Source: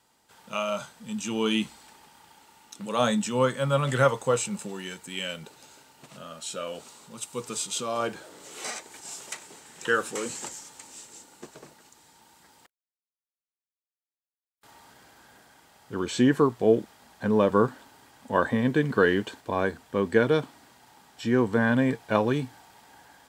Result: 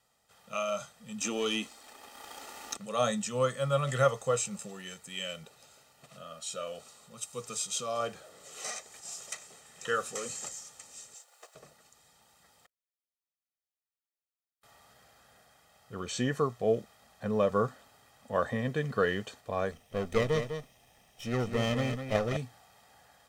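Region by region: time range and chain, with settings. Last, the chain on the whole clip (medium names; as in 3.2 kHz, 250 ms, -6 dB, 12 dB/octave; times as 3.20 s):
1.21–2.77 s: resonant low shelf 210 Hz -10 dB, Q 3 + waveshaping leveller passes 1 + three bands compressed up and down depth 70%
11.14–11.55 s: send-on-delta sampling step -58 dBFS + high-pass 530 Hz 24 dB/octave + transient shaper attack +3 dB, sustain -4 dB
19.71–22.37 s: comb filter that takes the minimum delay 0.34 ms + delay 202 ms -8 dB
whole clip: dynamic bell 6.2 kHz, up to +5 dB, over -50 dBFS, Q 1.6; comb 1.6 ms, depth 64%; trim -7 dB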